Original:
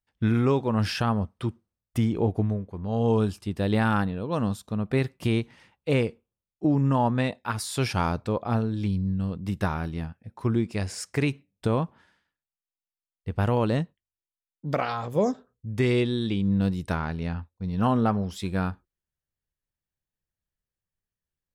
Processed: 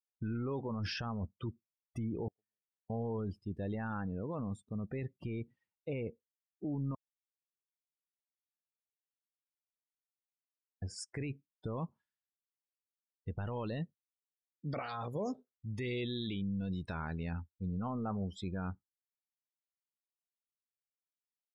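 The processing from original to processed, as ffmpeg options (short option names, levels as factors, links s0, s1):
-filter_complex "[0:a]asettb=1/sr,asplit=3[s0][s1][s2];[s0]atrim=end=2.284[s3];[s1]atrim=start=2.28:end=2.9,asetpts=PTS-STARTPTS,afade=t=in:d=0.004:c=qsin,afade=t=out:st=0.616:d=0.004:c=qsin,bandpass=f=1800:t=q:w=17[s4];[s2]atrim=start=2.896[s5];[s3][s4]acrossfade=d=0.004:c1=hsin:c2=qsin[s6];[s6][s5]acrossfade=d=0.004:c1=qsin:c2=hsin,asplit=3[s7][s8][s9];[s7]afade=t=out:st=11.76:d=0.02[s10];[s8]highshelf=f=2300:g=10,afade=t=in:st=11.76:d=0.02,afade=t=out:st=17.66:d=0.02[s11];[s9]afade=t=in:st=17.66:d=0.02[s12];[s10][s11][s12]amix=inputs=3:normalize=0,asplit=3[s13][s14][s15];[s13]atrim=end=6.95,asetpts=PTS-STARTPTS,afade=t=out:st=6.946:d=0.004:c=hsin[s16];[s14]atrim=start=6.95:end=10.82,asetpts=PTS-STARTPTS,volume=0[s17];[s15]atrim=start=10.82,asetpts=PTS-STARTPTS,afade=t=in:d=0.004:c=hsin[s18];[s16][s17][s18]concat=n=3:v=0:a=1,alimiter=limit=0.075:level=0:latency=1:release=10,afftdn=nr=30:nf=-39,volume=0.447"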